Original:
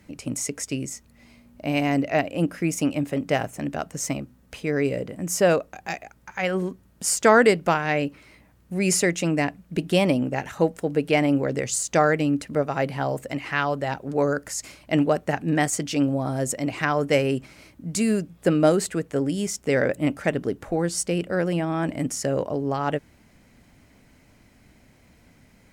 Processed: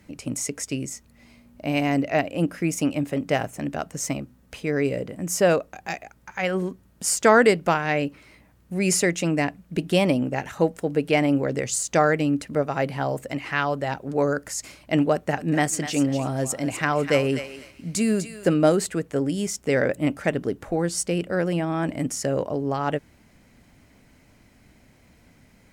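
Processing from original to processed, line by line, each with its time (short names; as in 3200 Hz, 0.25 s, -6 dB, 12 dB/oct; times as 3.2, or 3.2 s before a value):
15.13–18.54 thinning echo 0.248 s, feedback 24%, high-pass 990 Hz, level -8 dB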